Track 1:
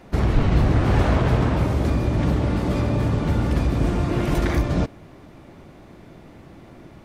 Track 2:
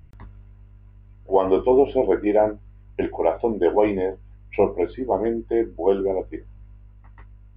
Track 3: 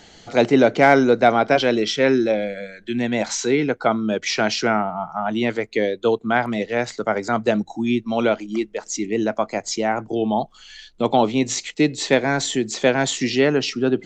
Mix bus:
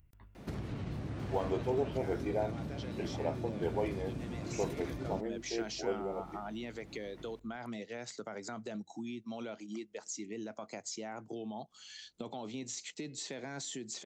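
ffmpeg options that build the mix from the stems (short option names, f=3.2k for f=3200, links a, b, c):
-filter_complex "[0:a]equalizer=f=980:t=o:w=2.6:g=-5.5,adelay=350,volume=-2.5dB[a];[1:a]aemphasis=mode=production:type=75fm,volume=-15.5dB[b];[2:a]bass=f=250:g=3,treble=f=4k:g=9,alimiter=limit=-13dB:level=0:latency=1:release=18,acompressor=mode=upward:threshold=-39dB:ratio=2.5,adelay=1200,volume=-12dB[c];[a][c]amix=inputs=2:normalize=0,highpass=100,acompressor=threshold=-40dB:ratio=4,volume=0dB[d];[b][d]amix=inputs=2:normalize=0"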